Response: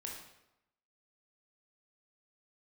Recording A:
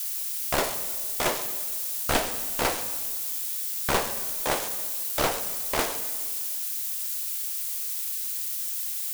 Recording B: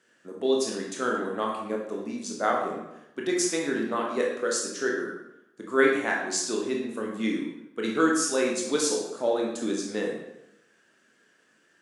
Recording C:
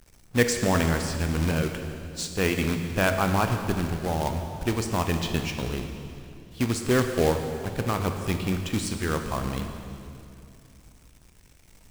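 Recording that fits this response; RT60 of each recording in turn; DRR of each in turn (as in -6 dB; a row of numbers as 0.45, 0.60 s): B; 1.8, 0.90, 2.7 s; 9.0, -1.5, 5.0 dB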